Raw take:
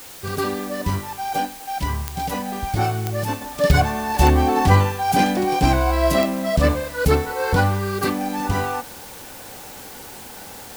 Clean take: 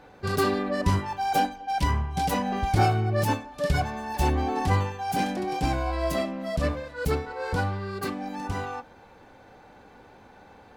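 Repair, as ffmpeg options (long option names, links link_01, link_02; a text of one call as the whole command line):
ffmpeg -i in.wav -af "adeclick=threshold=4,afwtdn=0.01,asetnsamples=nb_out_samples=441:pad=0,asendcmd='3.41 volume volume -9dB',volume=0dB" out.wav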